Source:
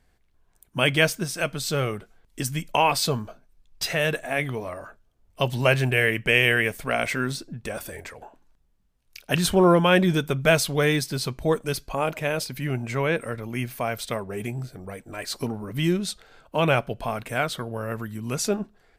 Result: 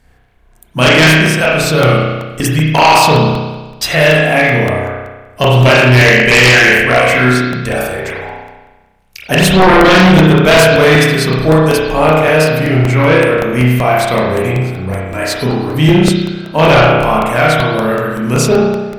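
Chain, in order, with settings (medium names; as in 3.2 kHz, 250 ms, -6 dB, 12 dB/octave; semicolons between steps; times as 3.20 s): spring tank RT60 1.2 s, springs 32 ms, chirp 80 ms, DRR -6 dB; sine folder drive 11 dB, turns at 1.5 dBFS; crackling interface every 0.19 s, samples 64, repeat, from 0.88 s; trim -4 dB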